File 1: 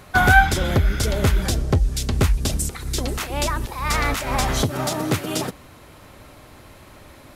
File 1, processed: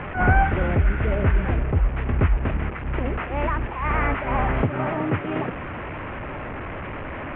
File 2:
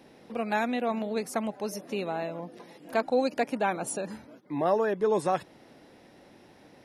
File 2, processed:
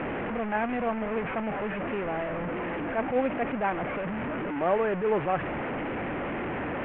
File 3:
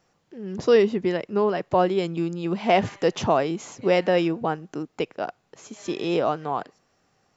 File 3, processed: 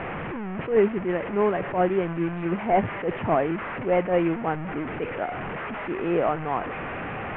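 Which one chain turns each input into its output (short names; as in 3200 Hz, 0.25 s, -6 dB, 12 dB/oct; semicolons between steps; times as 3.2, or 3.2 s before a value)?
delta modulation 16 kbps, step -25.5 dBFS; LPF 2400 Hz 24 dB/oct; attack slew limiter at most 150 dB/s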